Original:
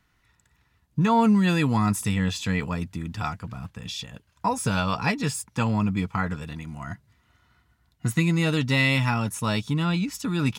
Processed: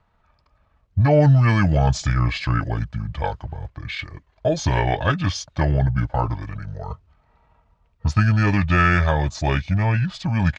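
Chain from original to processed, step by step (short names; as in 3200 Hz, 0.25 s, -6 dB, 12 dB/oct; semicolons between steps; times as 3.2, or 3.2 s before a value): LPF 8700 Hz 12 dB/oct; pitch shift -7.5 st; mismatched tape noise reduction decoder only; gain +5 dB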